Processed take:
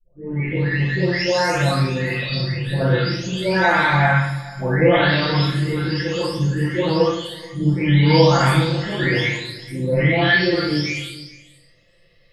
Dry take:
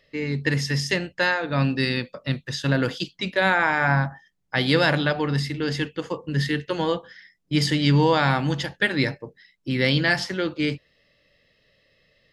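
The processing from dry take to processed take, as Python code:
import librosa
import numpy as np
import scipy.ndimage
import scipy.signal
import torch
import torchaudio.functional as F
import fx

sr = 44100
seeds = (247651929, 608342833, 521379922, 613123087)

p1 = fx.spec_delay(x, sr, highs='late', ms=849)
p2 = p1 + fx.echo_single(p1, sr, ms=429, db=-20.5, dry=0)
p3 = fx.room_shoebox(p2, sr, seeds[0], volume_m3=150.0, walls='mixed', distance_m=4.9)
y = F.gain(torch.from_numpy(p3), -8.0).numpy()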